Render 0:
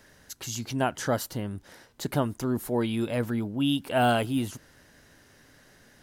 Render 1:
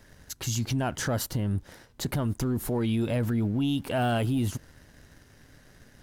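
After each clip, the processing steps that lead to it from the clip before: low shelf 160 Hz +12 dB; sample leveller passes 1; limiter -19 dBFS, peak gain reduction 9.5 dB; gain -1 dB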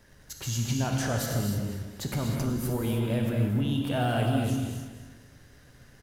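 feedback echo 0.241 s, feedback 33%, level -11.5 dB; non-linear reverb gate 0.34 s flat, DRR 0 dB; gain -3.5 dB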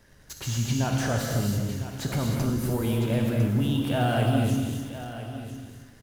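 in parallel at -10 dB: bit-crush 7-bit; on the sum: echo 1.004 s -13 dB; slew limiter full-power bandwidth 120 Hz

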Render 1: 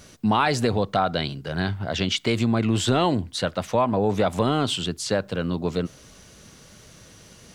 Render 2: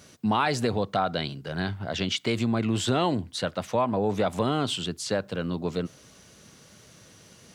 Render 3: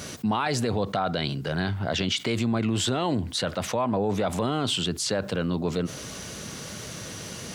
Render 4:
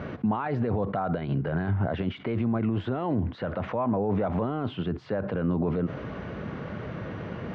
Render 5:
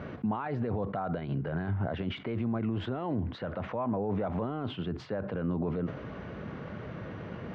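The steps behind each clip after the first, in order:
HPF 85 Hz; gain -3.5 dB
limiter -18 dBFS, peak gain reduction 6.5 dB; fast leveller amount 50%
limiter -23 dBFS, peak gain reduction 9.5 dB; Bessel low-pass 1400 Hz, order 4; gain +5 dB
sustainer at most 140 dB/s; gain -5 dB

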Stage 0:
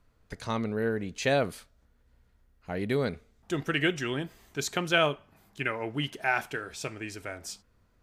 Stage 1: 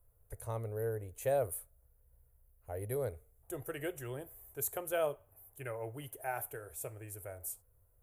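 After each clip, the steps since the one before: EQ curve 120 Hz 0 dB, 180 Hz -26 dB, 520 Hz -1 dB, 1200 Hz -12 dB, 5000 Hz -24 dB, 11000 Hz +15 dB; gain -2 dB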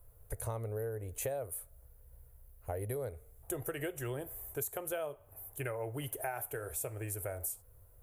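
compressor 12:1, threshold -44 dBFS, peak gain reduction 17 dB; gain +9.5 dB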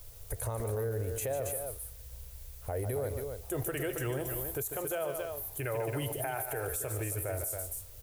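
added noise blue -63 dBFS; on a send: loudspeakers at several distances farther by 50 m -11 dB, 94 m -10 dB; on the sum: limiter -33.5 dBFS, peak gain reduction 9.5 dB; gain +8 dB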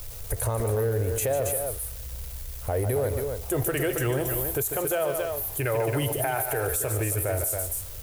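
zero-crossing step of -47.5 dBFS; gain +7.5 dB

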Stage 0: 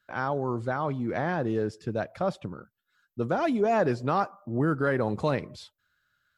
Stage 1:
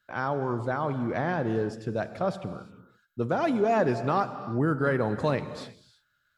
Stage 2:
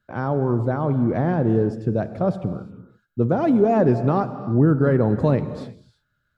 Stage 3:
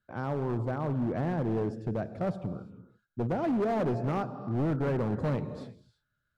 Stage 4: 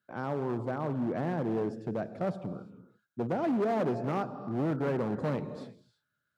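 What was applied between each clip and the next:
non-linear reverb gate 0.37 s flat, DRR 10.5 dB
tilt shelf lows +8.5 dB, about 760 Hz; gain +3 dB
overloaded stage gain 16.5 dB; gain -8.5 dB
HPF 160 Hz 12 dB/oct

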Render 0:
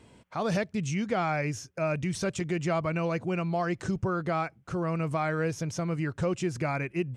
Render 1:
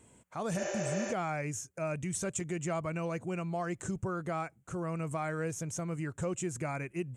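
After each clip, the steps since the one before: resonant high shelf 6000 Hz +7.5 dB, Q 3; spectral repair 0.61–1.1, 310–7500 Hz before; gain -6 dB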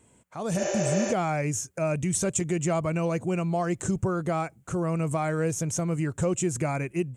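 dynamic EQ 1600 Hz, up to -5 dB, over -50 dBFS, Q 0.96; AGC gain up to 9 dB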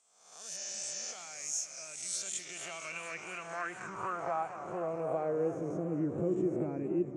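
spectral swells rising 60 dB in 0.78 s; band-pass sweep 5400 Hz -> 300 Hz, 1.9–5.89; warbling echo 0.232 s, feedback 75%, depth 176 cents, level -12 dB; gain -1.5 dB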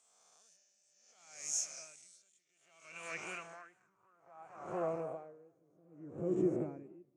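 dB-linear tremolo 0.62 Hz, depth 35 dB

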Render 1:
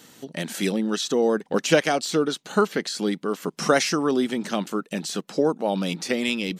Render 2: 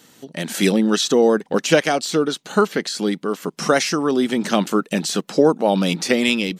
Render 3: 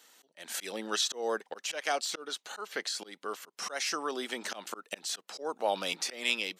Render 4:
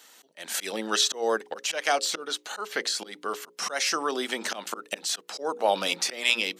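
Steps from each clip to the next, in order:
AGC; gain -1 dB
auto swell 0.198 s; HPF 630 Hz 12 dB/oct; gain -8 dB
notches 60/120/180/240/300/360/420/480/540 Hz; gain +6.5 dB

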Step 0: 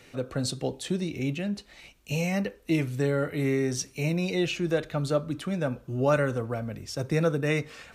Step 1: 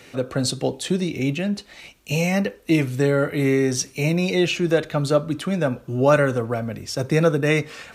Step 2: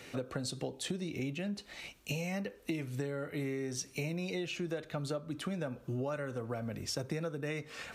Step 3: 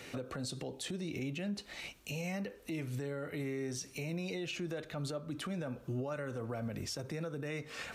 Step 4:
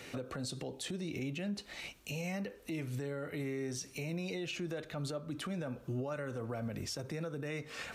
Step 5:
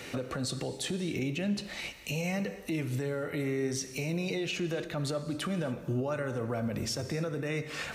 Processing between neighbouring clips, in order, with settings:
low shelf 61 Hz -11.5 dB; gain +7.5 dB
compressor 12:1, threshold -29 dBFS, peak gain reduction 18 dB; gain -4.5 dB
limiter -32 dBFS, peak gain reduction 9.5 dB; gain +1.5 dB
nothing audible
non-linear reverb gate 0.31 s flat, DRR 11.5 dB; gain +6 dB

